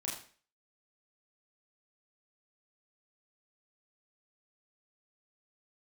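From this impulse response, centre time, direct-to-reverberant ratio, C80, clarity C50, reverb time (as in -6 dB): 40 ms, -4.5 dB, 9.0 dB, 5.5 dB, 0.40 s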